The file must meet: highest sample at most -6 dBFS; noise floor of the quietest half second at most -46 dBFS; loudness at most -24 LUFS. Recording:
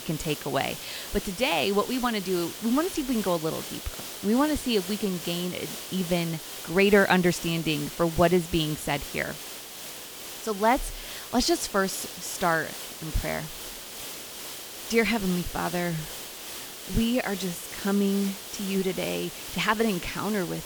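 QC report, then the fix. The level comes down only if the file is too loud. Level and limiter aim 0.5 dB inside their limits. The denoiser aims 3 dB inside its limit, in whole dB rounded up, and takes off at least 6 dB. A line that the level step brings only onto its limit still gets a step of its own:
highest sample -7.0 dBFS: OK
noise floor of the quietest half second -40 dBFS: fail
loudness -27.5 LUFS: OK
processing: denoiser 9 dB, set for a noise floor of -40 dBFS

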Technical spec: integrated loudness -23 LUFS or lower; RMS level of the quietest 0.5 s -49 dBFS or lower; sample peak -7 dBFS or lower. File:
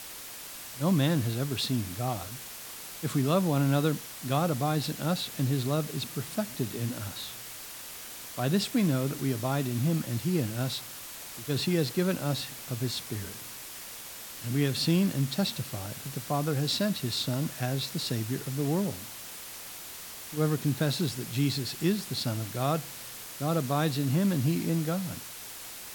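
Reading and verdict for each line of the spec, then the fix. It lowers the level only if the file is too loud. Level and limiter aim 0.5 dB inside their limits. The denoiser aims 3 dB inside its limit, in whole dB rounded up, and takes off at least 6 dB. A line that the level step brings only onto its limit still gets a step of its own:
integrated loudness -30.5 LUFS: OK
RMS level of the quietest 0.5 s -43 dBFS: fail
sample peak -12.5 dBFS: OK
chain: denoiser 9 dB, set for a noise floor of -43 dBFS

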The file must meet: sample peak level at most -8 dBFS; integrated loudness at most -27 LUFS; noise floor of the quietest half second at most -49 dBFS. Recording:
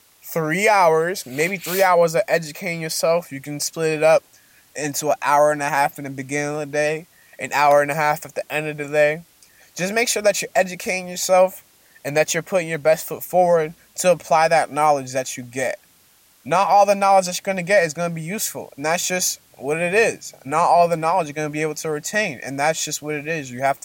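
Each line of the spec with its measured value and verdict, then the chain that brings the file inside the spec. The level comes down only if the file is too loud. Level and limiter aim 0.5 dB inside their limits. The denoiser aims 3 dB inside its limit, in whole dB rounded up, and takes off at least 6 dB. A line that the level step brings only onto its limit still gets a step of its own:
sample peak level -5.5 dBFS: fail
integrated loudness -20.0 LUFS: fail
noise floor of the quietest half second -55 dBFS: OK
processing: gain -7.5 dB

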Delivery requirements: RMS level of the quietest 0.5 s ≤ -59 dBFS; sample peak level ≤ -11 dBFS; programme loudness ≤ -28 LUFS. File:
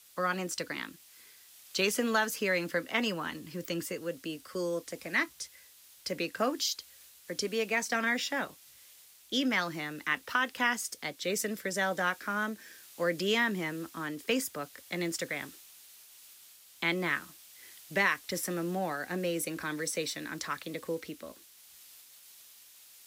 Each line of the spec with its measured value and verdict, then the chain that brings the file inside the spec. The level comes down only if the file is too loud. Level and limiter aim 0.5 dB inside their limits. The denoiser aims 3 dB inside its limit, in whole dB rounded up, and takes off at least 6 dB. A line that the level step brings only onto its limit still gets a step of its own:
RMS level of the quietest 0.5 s -57 dBFS: fail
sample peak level -14.5 dBFS: OK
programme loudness -32.5 LUFS: OK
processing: denoiser 6 dB, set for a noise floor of -57 dBFS

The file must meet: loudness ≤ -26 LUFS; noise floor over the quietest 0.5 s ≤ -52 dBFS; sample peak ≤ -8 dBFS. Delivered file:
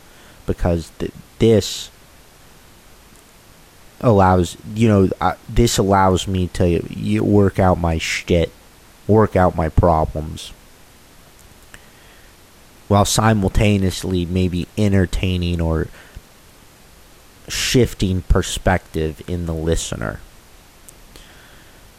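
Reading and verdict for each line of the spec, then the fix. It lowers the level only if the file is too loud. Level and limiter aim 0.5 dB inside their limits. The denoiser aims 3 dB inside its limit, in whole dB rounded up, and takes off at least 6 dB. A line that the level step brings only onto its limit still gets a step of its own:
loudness -18.0 LUFS: fail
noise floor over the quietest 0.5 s -46 dBFS: fail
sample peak -3.5 dBFS: fail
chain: gain -8.5 dB

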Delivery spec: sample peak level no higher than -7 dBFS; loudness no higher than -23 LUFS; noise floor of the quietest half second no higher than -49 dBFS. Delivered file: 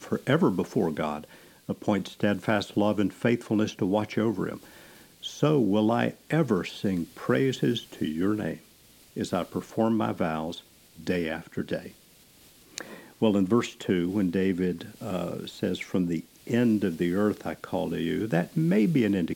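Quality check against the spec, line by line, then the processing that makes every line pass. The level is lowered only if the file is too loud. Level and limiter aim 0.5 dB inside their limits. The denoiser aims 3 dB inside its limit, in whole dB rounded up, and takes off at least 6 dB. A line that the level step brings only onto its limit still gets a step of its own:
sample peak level -8.5 dBFS: OK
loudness -27.5 LUFS: OK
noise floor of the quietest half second -56 dBFS: OK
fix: none

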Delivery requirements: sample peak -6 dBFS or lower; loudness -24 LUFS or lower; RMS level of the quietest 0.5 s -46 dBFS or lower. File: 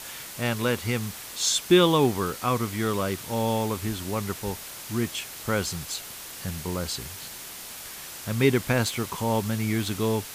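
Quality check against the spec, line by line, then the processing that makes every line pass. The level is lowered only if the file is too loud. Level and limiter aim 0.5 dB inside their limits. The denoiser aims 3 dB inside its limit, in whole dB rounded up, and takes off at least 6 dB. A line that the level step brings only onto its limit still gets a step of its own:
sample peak -8.0 dBFS: OK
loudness -26.5 LUFS: OK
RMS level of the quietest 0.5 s -40 dBFS: fail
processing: denoiser 9 dB, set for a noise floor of -40 dBFS

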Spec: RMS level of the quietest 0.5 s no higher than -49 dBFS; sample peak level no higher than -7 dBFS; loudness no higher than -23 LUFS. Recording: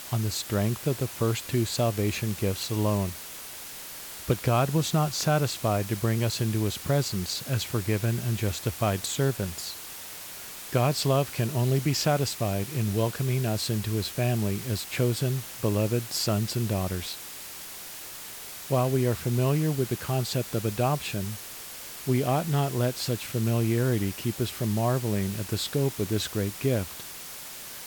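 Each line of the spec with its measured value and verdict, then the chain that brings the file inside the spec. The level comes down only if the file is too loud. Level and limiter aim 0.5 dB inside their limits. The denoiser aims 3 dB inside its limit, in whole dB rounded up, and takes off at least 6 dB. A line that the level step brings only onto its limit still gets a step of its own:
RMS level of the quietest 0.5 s -41 dBFS: fail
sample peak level -10.5 dBFS: OK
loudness -28.0 LUFS: OK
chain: denoiser 11 dB, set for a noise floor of -41 dBFS

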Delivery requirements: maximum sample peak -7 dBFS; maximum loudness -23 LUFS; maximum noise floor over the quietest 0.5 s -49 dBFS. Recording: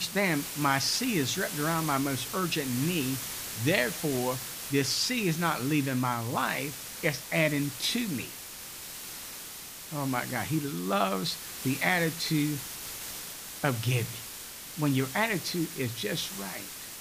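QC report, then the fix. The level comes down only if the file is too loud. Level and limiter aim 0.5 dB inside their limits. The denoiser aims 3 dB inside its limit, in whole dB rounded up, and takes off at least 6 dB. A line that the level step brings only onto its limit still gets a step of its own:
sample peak -11.5 dBFS: OK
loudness -30.0 LUFS: OK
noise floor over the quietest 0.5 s -43 dBFS: fail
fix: denoiser 9 dB, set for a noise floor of -43 dBFS

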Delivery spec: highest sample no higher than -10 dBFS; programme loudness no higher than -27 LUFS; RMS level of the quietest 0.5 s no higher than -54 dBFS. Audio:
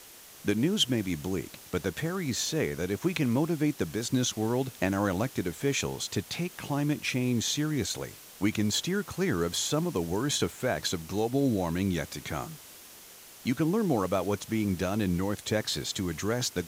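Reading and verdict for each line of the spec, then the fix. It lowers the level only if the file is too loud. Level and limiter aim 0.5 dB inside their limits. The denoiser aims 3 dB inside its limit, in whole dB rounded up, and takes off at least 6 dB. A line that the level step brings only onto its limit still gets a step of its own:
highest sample -13.5 dBFS: OK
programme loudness -29.5 LUFS: OK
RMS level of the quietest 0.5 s -50 dBFS: fail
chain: denoiser 7 dB, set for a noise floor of -50 dBFS

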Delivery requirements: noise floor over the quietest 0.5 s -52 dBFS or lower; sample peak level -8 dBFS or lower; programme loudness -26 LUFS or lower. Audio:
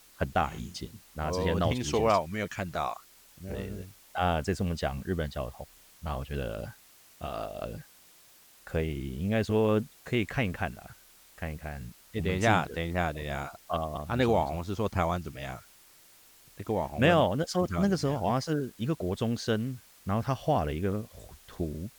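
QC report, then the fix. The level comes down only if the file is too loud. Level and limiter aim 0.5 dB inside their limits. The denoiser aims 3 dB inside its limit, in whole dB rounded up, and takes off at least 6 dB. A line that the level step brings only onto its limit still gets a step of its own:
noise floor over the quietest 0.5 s -58 dBFS: OK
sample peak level -10.5 dBFS: OK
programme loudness -30.5 LUFS: OK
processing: none

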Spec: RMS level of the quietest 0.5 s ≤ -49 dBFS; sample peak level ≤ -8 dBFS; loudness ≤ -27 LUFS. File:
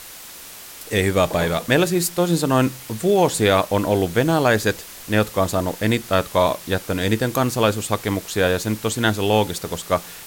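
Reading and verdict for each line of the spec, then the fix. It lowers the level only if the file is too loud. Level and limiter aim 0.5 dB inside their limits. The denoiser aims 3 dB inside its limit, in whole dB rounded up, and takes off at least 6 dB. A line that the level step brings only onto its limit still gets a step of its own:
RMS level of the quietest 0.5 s -39 dBFS: fail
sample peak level -3.5 dBFS: fail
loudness -20.0 LUFS: fail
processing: denoiser 6 dB, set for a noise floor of -39 dBFS; gain -7.5 dB

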